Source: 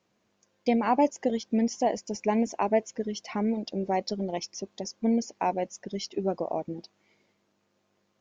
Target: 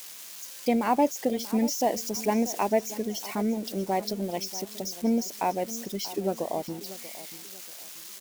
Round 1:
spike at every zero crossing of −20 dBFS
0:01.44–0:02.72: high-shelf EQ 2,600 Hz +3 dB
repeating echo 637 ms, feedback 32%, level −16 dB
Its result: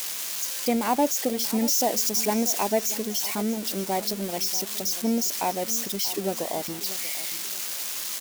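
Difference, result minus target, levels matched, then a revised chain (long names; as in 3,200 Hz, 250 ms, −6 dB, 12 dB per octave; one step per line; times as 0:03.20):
spike at every zero crossing: distortion +11 dB
spike at every zero crossing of −31.5 dBFS
0:01.44–0:02.72: high-shelf EQ 2,600 Hz +3 dB
repeating echo 637 ms, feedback 32%, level −16 dB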